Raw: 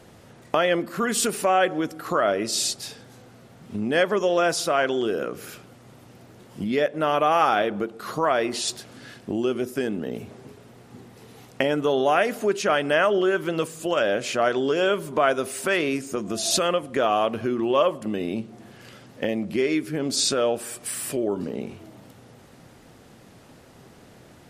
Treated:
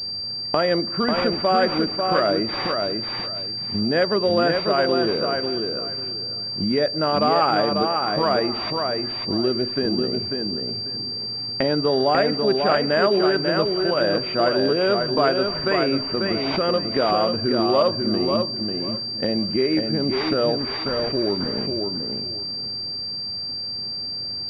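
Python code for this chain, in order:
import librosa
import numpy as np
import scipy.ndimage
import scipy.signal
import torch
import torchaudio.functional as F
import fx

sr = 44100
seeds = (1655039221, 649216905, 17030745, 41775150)

y = fx.low_shelf(x, sr, hz=220.0, db=7.0)
y = fx.echo_feedback(y, sr, ms=543, feedback_pct=22, wet_db=-4.5)
y = fx.pwm(y, sr, carrier_hz=4700.0)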